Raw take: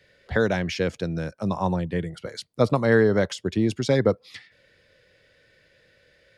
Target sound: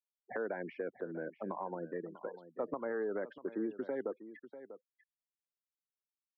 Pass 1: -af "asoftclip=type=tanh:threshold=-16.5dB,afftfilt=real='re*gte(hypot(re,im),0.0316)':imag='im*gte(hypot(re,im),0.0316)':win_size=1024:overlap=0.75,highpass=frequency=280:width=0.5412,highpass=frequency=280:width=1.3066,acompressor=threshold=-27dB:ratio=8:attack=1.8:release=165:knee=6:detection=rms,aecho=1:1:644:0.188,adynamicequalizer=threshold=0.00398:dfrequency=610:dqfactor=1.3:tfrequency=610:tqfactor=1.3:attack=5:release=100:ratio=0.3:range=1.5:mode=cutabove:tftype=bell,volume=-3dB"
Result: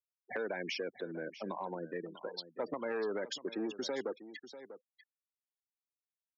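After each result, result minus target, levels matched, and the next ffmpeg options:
soft clipping: distortion +12 dB; 2,000 Hz band +3.0 dB
-af "asoftclip=type=tanh:threshold=-7dB,afftfilt=real='re*gte(hypot(re,im),0.0316)':imag='im*gte(hypot(re,im),0.0316)':win_size=1024:overlap=0.75,highpass=frequency=280:width=0.5412,highpass=frequency=280:width=1.3066,acompressor=threshold=-27dB:ratio=8:attack=1.8:release=165:knee=6:detection=rms,aecho=1:1:644:0.188,adynamicequalizer=threshold=0.00398:dfrequency=610:dqfactor=1.3:tfrequency=610:tqfactor=1.3:attack=5:release=100:ratio=0.3:range=1.5:mode=cutabove:tftype=bell,volume=-3dB"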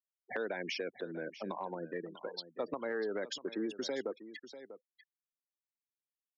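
2,000 Hz band +3.5 dB
-af "asoftclip=type=tanh:threshold=-7dB,afftfilt=real='re*gte(hypot(re,im),0.0316)':imag='im*gte(hypot(re,im),0.0316)':win_size=1024:overlap=0.75,highpass=frequency=280:width=0.5412,highpass=frequency=280:width=1.3066,acompressor=threshold=-27dB:ratio=8:attack=1.8:release=165:knee=6:detection=rms,lowpass=frequency=1600:width=0.5412,lowpass=frequency=1600:width=1.3066,aecho=1:1:644:0.188,adynamicequalizer=threshold=0.00398:dfrequency=610:dqfactor=1.3:tfrequency=610:tqfactor=1.3:attack=5:release=100:ratio=0.3:range=1.5:mode=cutabove:tftype=bell,volume=-3dB"

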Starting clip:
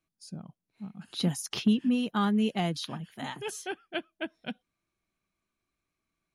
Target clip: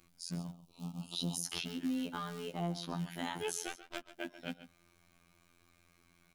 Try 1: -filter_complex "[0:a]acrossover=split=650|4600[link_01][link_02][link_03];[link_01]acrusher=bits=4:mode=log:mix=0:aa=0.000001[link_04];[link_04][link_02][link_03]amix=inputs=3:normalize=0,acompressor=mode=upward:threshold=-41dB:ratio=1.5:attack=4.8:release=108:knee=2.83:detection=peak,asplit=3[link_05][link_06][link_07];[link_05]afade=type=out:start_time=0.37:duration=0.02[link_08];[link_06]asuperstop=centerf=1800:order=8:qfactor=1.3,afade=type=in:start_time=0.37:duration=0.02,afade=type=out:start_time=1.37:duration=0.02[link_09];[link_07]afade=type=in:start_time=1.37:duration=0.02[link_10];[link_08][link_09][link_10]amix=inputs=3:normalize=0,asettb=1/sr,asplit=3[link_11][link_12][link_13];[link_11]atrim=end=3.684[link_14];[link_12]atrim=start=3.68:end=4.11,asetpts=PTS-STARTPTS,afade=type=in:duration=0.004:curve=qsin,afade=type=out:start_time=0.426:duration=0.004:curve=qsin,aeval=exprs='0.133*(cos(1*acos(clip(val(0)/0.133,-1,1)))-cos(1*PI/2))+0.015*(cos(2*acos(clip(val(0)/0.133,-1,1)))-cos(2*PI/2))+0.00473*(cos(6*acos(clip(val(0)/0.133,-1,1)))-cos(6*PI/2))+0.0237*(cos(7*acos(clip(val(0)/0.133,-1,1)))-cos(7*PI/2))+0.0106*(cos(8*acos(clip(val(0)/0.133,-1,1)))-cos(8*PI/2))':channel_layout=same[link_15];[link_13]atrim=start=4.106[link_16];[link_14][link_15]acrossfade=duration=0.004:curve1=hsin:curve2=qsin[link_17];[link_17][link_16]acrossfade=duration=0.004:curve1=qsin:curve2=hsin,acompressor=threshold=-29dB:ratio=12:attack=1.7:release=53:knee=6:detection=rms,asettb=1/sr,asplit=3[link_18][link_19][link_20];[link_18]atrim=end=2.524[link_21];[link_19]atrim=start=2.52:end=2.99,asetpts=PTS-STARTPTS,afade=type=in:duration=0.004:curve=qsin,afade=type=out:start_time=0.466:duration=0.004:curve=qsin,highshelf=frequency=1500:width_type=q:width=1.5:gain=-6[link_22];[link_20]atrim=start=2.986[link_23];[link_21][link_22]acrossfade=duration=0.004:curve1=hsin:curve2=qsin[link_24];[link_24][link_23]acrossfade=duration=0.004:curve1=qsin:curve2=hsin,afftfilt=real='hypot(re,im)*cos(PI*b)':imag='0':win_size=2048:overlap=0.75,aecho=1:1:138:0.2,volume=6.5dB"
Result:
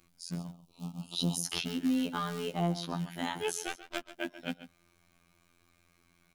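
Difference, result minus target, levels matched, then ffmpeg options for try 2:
downward compressor: peak gain reduction −6.5 dB
-filter_complex "[0:a]acrossover=split=650|4600[link_01][link_02][link_03];[link_01]acrusher=bits=4:mode=log:mix=0:aa=0.000001[link_04];[link_04][link_02][link_03]amix=inputs=3:normalize=0,acompressor=mode=upward:threshold=-41dB:ratio=1.5:attack=4.8:release=108:knee=2.83:detection=peak,asplit=3[link_05][link_06][link_07];[link_05]afade=type=out:start_time=0.37:duration=0.02[link_08];[link_06]asuperstop=centerf=1800:order=8:qfactor=1.3,afade=type=in:start_time=0.37:duration=0.02,afade=type=out:start_time=1.37:duration=0.02[link_09];[link_07]afade=type=in:start_time=1.37:duration=0.02[link_10];[link_08][link_09][link_10]amix=inputs=3:normalize=0,asettb=1/sr,asplit=3[link_11][link_12][link_13];[link_11]atrim=end=3.684[link_14];[link_12]atrim=start=3.68:end=4.11,asetpts=PTS-STARTPTS,afade=type=in:duration=0.004:curve=qsin,afade=type=out:start_time=0.426:duration=0.004:curve=qsin,aeval=exprs='0.133*(cos(1*acos(clip(val(0)/0.133,-1,1)))-cos(1*PI/2))+0.015*(cos(2*acos(clip(val(0)/0.133,-1,1)))-cos(2*PI/2))+0.00473*(cos(6*acos(clip(val(0)/0.133,-1,1)))-cos(6*PI/2))+0.0237*(cos(7*acos(clip(val(0)/0.133,-1,1)))-cos(7*PI/2))+0.0106*(cos(8*acos(clip(val(0)/0.133,-1,1)))-cos(8*PI/2))':channel_layout=same[link_15];[link_13]atrim=start=4.106[link_16];[link_14][link_15]acrossfade=duration=0.004:curve1=hsin:curve2=qsin[link_17];[link_17][link_16]acrossfade=duration=0.004:curve1=qsin:curve2=hsin,acompressor=threshold=-36dB:ratio=12:attack=1.7:release=53:knee=6:detection=rms,asettb=1/sr,asplit=3[link_18][link_19][link_20];[link_18]atrim=end=2.524[link_21];[link_19]atrim=start=2.52:end=2.99,asetpts=PTS-STARTPTS,afade=type=in:duration=0.004:curve=qsin,afade=type=out:start_time=0.466:duration=0.004:curve=qsin,highshelf=frequency=1500:width_type=q:width=1.5:gain=-6[link_22];[link_20]atrim=start=2.986[link_23];[link_21][link_22]acrossfade=duration=0.004:curve1=hsin:curve2=qsin[link_24];[link_24][link_23]acrossfade=duration=0.004:curve1=qsin:curve2=hsin,afftfilt=real='hypot(re,im)*cos(PI*b)':imag='0':win_size=2048:overlap=0.75,aecho=1:1:138:0.2,volume=6.5dB"

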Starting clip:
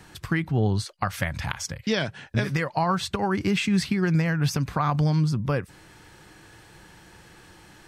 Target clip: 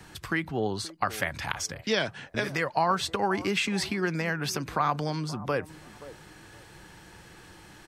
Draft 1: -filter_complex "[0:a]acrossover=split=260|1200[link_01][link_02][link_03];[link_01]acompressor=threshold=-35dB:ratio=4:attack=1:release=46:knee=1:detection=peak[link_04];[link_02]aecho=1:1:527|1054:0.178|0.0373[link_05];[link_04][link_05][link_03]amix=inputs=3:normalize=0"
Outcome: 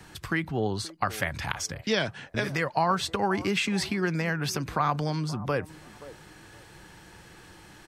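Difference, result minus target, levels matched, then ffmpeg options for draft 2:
downward compressor: peak gain reduction −5 dB
-filter_complex "[0:a]acrossover=split=260|1200[link_01][link_02][link_03];[link_01]acompressor=threshold=-41.5dB:ratio=4:attack=1:release=46:knee=1:detection=peak[link_04];[link_02]aecho=1:1:527|1054:0.178|0.0373[link_05];[link_04][link_05][link_03]amix=inputs=3:normalize=0"

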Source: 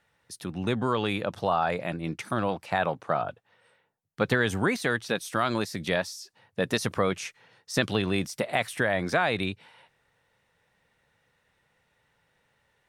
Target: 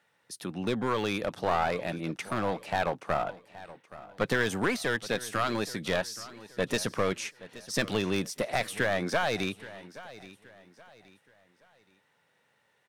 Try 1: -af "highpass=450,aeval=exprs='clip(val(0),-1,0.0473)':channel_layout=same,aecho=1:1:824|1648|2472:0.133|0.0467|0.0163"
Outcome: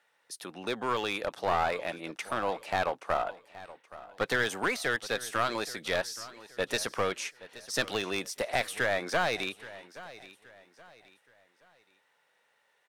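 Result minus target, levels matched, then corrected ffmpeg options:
125 Hz band −7.0 dB
-af "highpass=170,aeval=exprs='clip(val(0),-1,0.0473)':channel_layout=same,aecho=1:1:824|1648|2472:0.133|0.0467|0.0163"

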